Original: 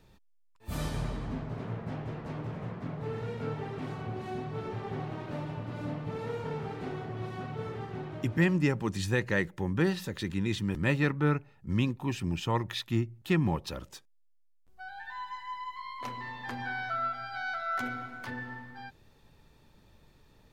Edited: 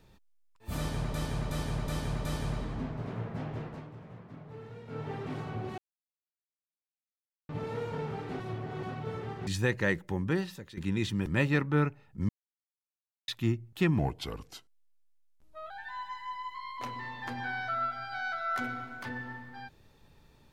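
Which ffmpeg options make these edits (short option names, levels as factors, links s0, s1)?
-filter_complex "[0:a]asplit=17[s0][s1][s2][s3][s4][s5][s6][s7][s8][s9][s10][s11][s12][s13][s14][s15][s16];[s0]atrim=end=1.142[s17];[s1]atrim=start=0.768:end=1.142[s18];[s2]atrim=start=0.768:end=1.142[s19];[s3]atrim=start=0.768:end=1.142[s20];[s4]atrim=start=0.768:end=2.4,asetpts=PTS-STARTPTS,afade=t=out:st=1.372:d=0.26:silence=0.316228[s21];[s5]atrim=start=2.4:end=3.38,asetpts=PTS-STARTPTS,volume=0.316[s22];[s6]atrim=start=3.38:end=4.3,asetpts=PTS-STARTPTS,afade=t=in:d=0.26:silence=0.316228,afade=t=out:st=0.916:d=0.004:c=hsin[s23];[s7]atrim=start=4.3:end=6.01,asetpts=PTS-STARTPTS,volume=0[s24];[s8]atrim=start=6.01:end=6.922,asetpts=PTS-STARTPTS,afade=t=in:d=0.004:c=hsin[s25];[s9]atrim=start=6.918:end=7.352,asetpts=PTS-STARTPTS,areverse[s26];[s10]atrim=start=7.348:end=7.992[s27];[s11]atrim=start=8.958:end=10.26,asetpts=PTS-STARTPTS,afade=t=out:st=0.652:d=0.65:silence=0.16788[s28];[s12]atrim=start=10.26:end=11.78,asetpts=PTS-STARTPTS,afade=t=in:d=0.004:c=hsin:silence=0.16788,afade=t=out:st=1.516:d=0.004:c=hsin[s29];[s13]atrim=start=11.78:end=12.77,asetpts=PTS-STARTPTS,volume=0[s30];[s14]atrim=start=12.77:end=13.484,asetpts=PTS-STARTPTS,afade=t=in:d=0.004:c=hsin[s31];[s15]atrim=start=13.48:end=14.92,asetpts=PTS-STARTPTS,asetrate=37044,aresample=44100[s32];[s16]atrim=start=14.916[s33];[s17][s18]acrossfade=d=0.004:c1=hsin:c2=hsin[s34];[s34][s19]acrossfade=d=0.004:c1=hsin:c2=hsin[s35];[s35][s20]acrossfade=d=0.004:c1=hsin:c2=hsin[s36];[s21][s22][s23][s24][s25]concat=n=5:v=0:a=1[s37];[s36][s37]acrossfade=d=0.004:c1=hsin:c2=hsin[s38];[s38][s26]acrossfade=d=0.004:c1=hsin:c2=hsin[s39];[s39][s27]acrossfade=d=0.004:c1=hsin:c2=hsin[s40];[s28][s29][s30][s31]concat=n=4:v=0:a=1[s41];[s40][s41]acrossfade=d=0.004:c1=hsin:c2=hsin[s42];[s42][s32]acrossfade=d=0.004:c1=hsin:c2=hsin[s43];[s43][s33]acrossfade=d=0.004:c1=hsin:c2=hsin"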